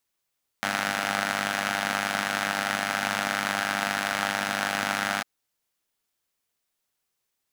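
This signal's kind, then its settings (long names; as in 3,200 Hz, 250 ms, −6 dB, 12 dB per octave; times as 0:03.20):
pulse-train model of a four-cylinder engine, steady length 4.60 s, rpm 3,000, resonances 240/750/1,400 Hz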